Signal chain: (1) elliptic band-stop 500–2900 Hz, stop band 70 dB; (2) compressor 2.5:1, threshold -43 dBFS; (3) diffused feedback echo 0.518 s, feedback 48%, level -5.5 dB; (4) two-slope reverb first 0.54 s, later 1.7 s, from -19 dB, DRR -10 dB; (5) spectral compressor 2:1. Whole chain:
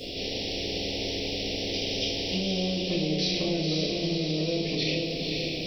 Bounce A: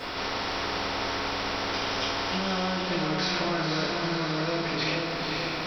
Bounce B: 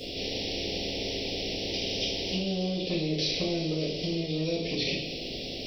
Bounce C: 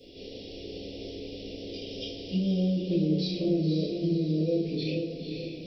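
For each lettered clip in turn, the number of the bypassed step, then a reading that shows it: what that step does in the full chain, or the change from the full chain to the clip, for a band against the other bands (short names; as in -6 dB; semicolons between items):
1, 1 kHz band +16.5 dB; 3, loudness change -2.0 LU; 5, 2 kHz band -14.0 dB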